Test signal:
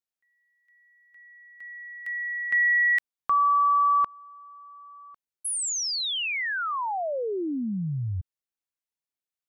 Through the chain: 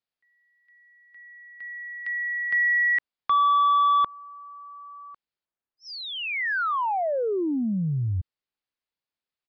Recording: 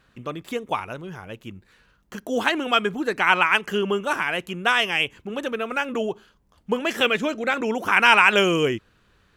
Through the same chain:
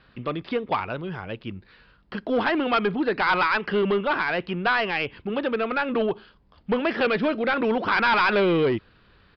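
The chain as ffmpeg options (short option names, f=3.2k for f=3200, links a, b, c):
-filter_complex "[0:a]acrossover=split=610|2200[a][b][c];[c]acompressor=threshold=-43dB:ratio=6:attack=6.6:release=64:detection=peak[d];[a][b][d]amix=inputs=3:normalize=0,asoftclip=type=tanh:threshold=-20dB,aresample=11025,aresample=44100,volume=4dB"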